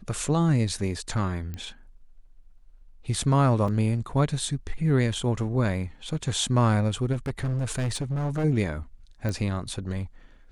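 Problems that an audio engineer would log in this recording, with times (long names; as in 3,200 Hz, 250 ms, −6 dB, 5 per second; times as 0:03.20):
0:01.54: click −22 dBFS
0:03.68: drop-out 3.8 ms
0:07.12–0:08.45: clipping −24 dBFS
0:09.29: click −18 dBFS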